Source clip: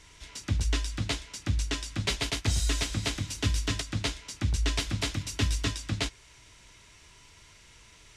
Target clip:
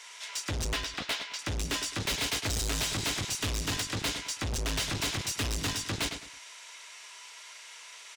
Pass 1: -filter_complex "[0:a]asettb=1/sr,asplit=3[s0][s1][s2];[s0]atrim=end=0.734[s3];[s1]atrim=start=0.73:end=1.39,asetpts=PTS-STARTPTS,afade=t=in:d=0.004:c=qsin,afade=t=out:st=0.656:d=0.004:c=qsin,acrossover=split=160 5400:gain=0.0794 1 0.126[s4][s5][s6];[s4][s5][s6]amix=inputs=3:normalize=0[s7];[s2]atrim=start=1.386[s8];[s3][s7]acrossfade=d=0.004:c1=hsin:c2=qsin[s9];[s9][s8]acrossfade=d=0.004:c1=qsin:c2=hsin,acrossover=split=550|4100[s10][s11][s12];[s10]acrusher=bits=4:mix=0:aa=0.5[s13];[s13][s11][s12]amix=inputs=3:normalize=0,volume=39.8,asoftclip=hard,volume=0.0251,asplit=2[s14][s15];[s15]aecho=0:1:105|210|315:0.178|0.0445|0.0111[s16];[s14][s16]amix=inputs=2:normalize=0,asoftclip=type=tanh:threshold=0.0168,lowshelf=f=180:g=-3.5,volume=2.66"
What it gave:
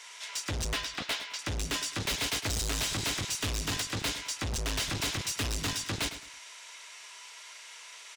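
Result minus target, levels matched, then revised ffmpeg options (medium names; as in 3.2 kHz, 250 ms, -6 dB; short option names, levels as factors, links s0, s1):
overload inside the chain: distortion +8 dB
-filter_complex "[0:a]asettb=1/sr,asplit=3[s0][s1][s2];[s0]atrim=end=0.734[s3];[s1]atrim=start=0.73:end=1.39,asetpts=PTS-STARTPTS,afade=t=in:d=0.004:c=qsin,afade=t=out:st=0.656:d=0.004:c=qsin,acrossover=split=160 5400:gain=0.0794 1 0.126[s4][s5][s6];[s4][s5][s6]amix=inputs=3:normalize=0[s7];[s2]atrim=start=1.386[s8];[s3][s7]acrossfade=d=0.004:c1=hsin:c2=qsin[s9];[s9][s8]acrossfade=d=0.004:c1=qsin:c2=hsin,acrossover=split=550|4100[s10][s11][s12];[s10]acrusher=bits=4:mix=0:aa=0.5[s13];[s13][s11][s12]amix=inputs=3:normalize=0,volume=15,asoftclip=hard,volume=0.0668,asplit=2[s14][s15];[s15]aecho=0:1:105|210|315:0.178|0.0445|0.0111[s16];[s14][s16]amix=inputs=2:normalize=0,asoftclip=type=tanh:threshold=0.0168,lowshelf=f=180:g=-3.5,volume=2.66"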